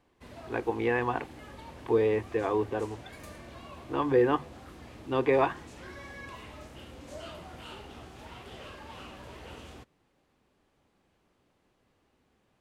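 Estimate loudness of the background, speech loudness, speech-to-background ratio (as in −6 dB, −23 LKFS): −46.5 LKFS, −29.0 LKFS, 17.5 dB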